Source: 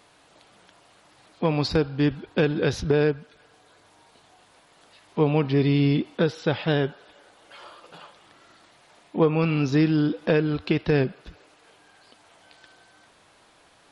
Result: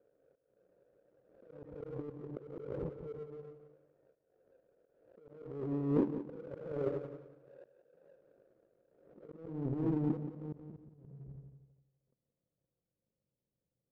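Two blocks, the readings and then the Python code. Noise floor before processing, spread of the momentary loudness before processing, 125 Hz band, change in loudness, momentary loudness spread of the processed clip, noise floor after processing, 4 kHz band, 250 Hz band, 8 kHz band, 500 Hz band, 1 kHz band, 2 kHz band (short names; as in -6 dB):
-58 dBFS, 5 LU, -17.0 dB, -15.0 dB, 22 LU, under -85 dBFS, under -35 dB, -14.5 dB, n/a, -16.5 dB, -20.0 dB, -31.5 dB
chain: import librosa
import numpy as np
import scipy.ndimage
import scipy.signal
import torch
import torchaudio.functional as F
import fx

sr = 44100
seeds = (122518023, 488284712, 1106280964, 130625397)

p1 = fx.bit_reversed(x, sr, seeds[0], block=16)
p2 = fx.formant_cascade(p1, sr, vowel='e')
p3 = fx.rev_fdn(p2, sr, rt60_s=0.9, lf_ratio=1.4, hf_ratio=0.8, size_ms=45.0, drr_db=8.0)
p4 = fx.over_compress(p3, sr, threshold_db=-39.0, ratio=-0.5)
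p5 = fx.filter_sweep_lowpass(p4, sr, from_hz=440.0, to_hz=170.0, start_s=8.46, end_s=11.04, q=1.6)
p6 = fx.auto_swell(p5, sr, attack_ms=339.0)
p7 = fx.power_curve(p6, sr, exponent=1.4)
p8 = p7 + fx.echo_feedback(p7, sr, ms=177, feedback_pct=21, wet_db=-11, dry=0)
p9 = fx.pre_swell(p8, sr, db_per_s=60.0)
y = p9 * librosa.db_to_amplitude(6.5)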